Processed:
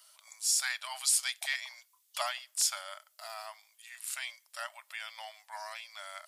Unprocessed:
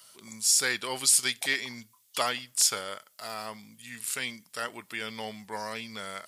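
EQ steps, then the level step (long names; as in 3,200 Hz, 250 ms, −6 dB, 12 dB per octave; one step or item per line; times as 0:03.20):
linear-phase brick-wall high-pass 570 Hz
−5.5 dB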